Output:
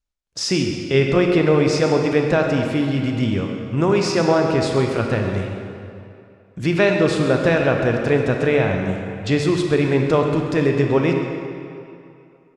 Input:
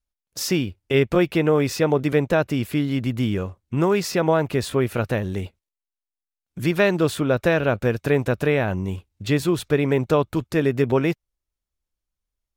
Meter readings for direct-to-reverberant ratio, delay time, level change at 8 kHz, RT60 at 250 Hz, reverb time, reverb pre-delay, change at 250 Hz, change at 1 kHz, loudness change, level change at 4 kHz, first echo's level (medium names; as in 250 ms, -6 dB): 2.0 dB, 134 ms, +1.5 dB, 2.4 s, 2.6 s, 27 ms, +3.0 dB, +3.0 dB, +3.0 dB, +4.0 dB, -13.0 dB